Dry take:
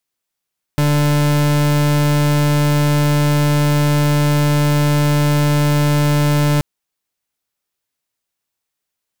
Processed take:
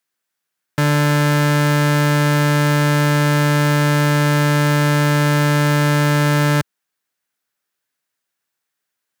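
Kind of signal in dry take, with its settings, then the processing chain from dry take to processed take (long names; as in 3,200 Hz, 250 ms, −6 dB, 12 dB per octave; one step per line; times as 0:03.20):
pulse wave 147 Hz, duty 38% −14 dBFS 5.83 s
stylus tracing distortion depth 0.02 ms
high-pass filter 120 Hz
parametric band 1,600 Hz +7.5 dB 0.62 octaves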